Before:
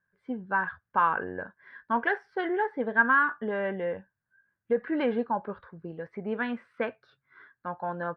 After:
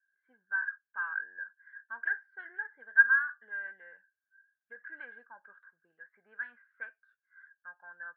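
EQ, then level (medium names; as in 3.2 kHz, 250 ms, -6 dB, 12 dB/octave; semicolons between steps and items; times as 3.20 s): band-pass filter 1.6 kHz, Q 18; +3.0 dB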